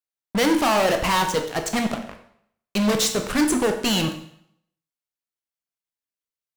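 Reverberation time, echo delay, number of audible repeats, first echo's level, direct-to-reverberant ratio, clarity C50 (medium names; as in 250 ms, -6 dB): 0.70 s, no echo, no echo, no echo, 5.0 dB, 8.5 dB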